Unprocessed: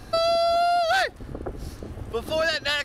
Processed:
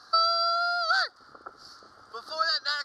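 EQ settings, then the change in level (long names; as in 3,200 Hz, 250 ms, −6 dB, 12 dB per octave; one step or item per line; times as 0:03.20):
pair of resonant band-passes 2,500 Hz, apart 1.8 octaves
+7.0 dB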